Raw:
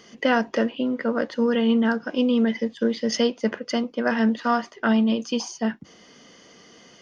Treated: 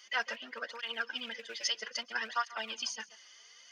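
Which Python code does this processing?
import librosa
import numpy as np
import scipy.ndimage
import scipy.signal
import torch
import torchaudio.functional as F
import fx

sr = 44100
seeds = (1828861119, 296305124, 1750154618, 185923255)

y = fx.rattle_buzz(x, sr, strikes_db=-26.0, level_db=-30.0)
y = scipy.signal.sosfilt(scipy.signal.bessel(2, 2000.0, 'highpass', norm='mag', fs=sr, output='sos'), y)
y = fx.stretch_vocoder(y, sr, factor=0.53)
y = fx.echo_feedback(y, sr, ms=137, feedback_pct=42, wet_db=-19)
y = fx.flanger_cancel(y, sr, hz=0.61, depth_ms=4.5)
y = F.gain(torch.from_numpy(y), 2.5).numpy()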